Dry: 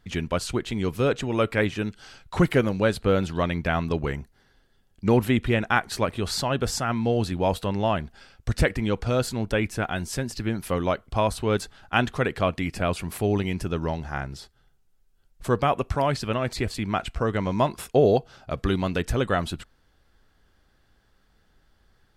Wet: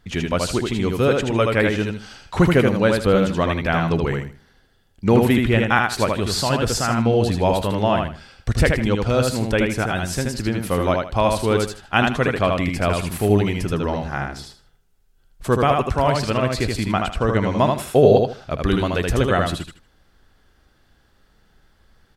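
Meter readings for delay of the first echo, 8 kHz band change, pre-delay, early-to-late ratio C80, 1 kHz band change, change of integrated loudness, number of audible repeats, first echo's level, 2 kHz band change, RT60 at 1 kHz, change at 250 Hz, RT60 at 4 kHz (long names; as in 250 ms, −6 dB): 78 ms, +5.5 dB, no reverb audible, no reverb audible, +5.5 dB, +5.5 dB, 3, −3.5 dB, +5.5 dB, no reverb audible, +5.5 dB, no reverb audible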